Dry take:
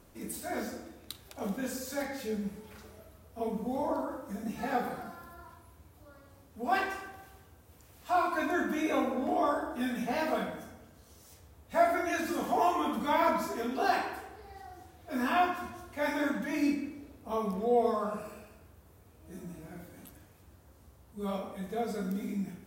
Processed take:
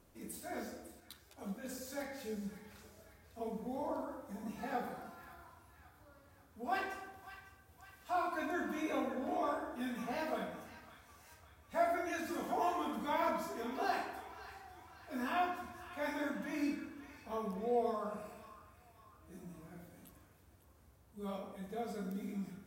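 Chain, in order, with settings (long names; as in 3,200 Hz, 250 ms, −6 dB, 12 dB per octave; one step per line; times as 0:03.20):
on a send: echo with a time of its own for lows and highs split 940 Hz, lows 99 ms, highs 551 ms, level −13 dB
0:01.00–0:01.69: on the sum: string-ensemble chorus
level −7.5 dB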